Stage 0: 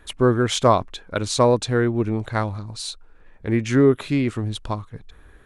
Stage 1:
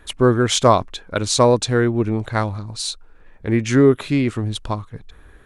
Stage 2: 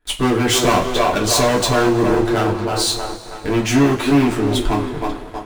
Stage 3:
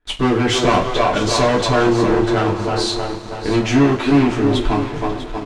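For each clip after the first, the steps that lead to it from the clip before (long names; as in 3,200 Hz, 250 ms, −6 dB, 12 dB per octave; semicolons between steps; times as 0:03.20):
dynamic equaliser 6,500 Hz, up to +4 dB, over −37 dBFS, Q 0.72; level +2.5 dB
delay with a band-pass on its return 318 ms, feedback 44%, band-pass 640 Hz, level −4 dB; leveller curve on the samples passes 5; coupled-rooms reverb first 0.21 s, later 2.3 s, from −21 dB, DRR −3.5 dB; level −14.5 dB
repeating echo 645 ms, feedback 36%, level −12 dB; in parallel at −7 dB: bit reduction 5 bits; on the sum: high-frequency loss of the air 95 metres; level −2.5 dB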